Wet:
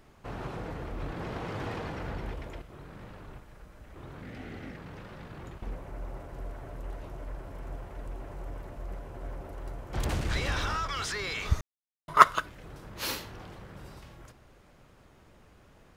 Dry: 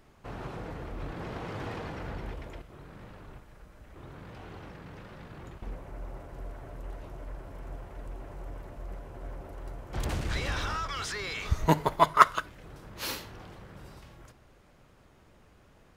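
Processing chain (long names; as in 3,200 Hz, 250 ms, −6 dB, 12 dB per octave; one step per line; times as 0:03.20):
0:04.22–0:04.77: thirty-one-band graphic EQ 250 Hz +12 dB, 1,000 Hz −11 dB, 2,000 Hz +8 dB
0:11.61–0:12.08: silence
level +1.5 dB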